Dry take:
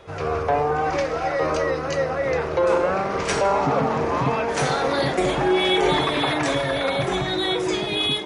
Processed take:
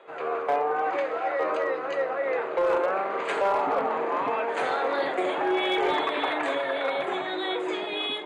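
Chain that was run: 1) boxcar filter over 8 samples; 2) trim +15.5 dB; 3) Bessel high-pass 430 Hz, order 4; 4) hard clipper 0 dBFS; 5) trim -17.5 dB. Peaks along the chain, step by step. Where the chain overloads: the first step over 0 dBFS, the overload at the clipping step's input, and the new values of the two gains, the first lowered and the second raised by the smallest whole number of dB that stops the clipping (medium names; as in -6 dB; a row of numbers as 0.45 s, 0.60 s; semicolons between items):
-9.5 dBFS, +6.0 dBFS, +5.0 dBFS, 0.0 dBFS, -17.5 dBFS; step 2, 5.0 dB; step 2 +10.5 dB, step 5 -12.5 dB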